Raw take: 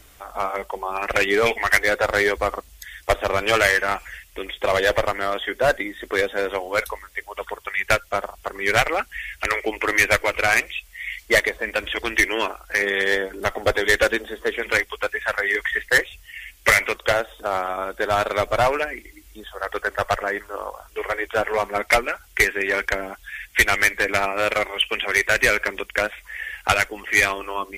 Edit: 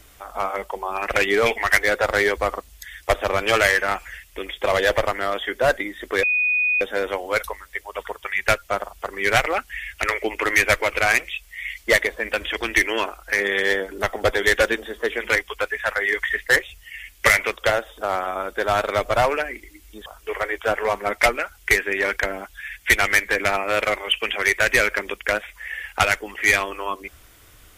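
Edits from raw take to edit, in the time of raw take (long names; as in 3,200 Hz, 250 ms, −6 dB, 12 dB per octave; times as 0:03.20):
0:06.23: insert tone 2,480 Hz −17 dBFS 0.58 s
0:19.48–0:20.75: remove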